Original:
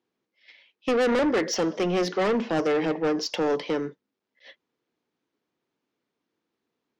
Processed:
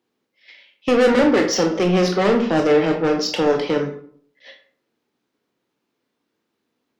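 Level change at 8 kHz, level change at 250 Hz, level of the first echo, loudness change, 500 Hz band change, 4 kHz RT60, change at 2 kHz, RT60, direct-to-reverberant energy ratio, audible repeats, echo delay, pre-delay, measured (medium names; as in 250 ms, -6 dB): +7.0 dB, +7.5 dB, no echo, +7.0 dB, +7.0 dB, 0.35 s, +6.5 dB, 0.55 s, 4.0 dB, no echo, no echo, 19 ms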